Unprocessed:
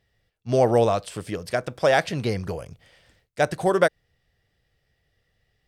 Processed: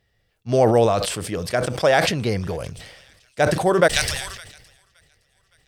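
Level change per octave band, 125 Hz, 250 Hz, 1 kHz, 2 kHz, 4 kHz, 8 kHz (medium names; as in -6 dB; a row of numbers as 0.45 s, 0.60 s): +4.0 dB, +4.0 dB, +3.0 dB, +4.5 dB, +9.5 dB, +11.5 dB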